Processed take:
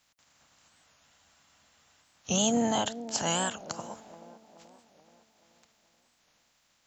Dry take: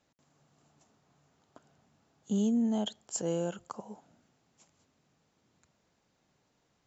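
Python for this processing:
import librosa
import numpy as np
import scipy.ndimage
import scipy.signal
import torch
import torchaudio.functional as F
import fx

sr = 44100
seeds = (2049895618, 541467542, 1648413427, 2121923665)

y = fx.spec_clip(x, sr, under_db=23)
y = fx.peak_eq(y, sr, hz=400.0, db=-12.0, octaves=0.46)
y = fx.echo_wet_bandpass(y, sr, ms=430, feedback_pct=50, hz=420.0, wet_db=-12)
y = fx.spec_freeze(y, sr, seeds[0], at_s=0.73, hold_s=1.31)
y = fx.record_warp(y, sr, rpm=45.0, depth_cents=160.0)
y = y * librosa.db_to_amplitude(4.5)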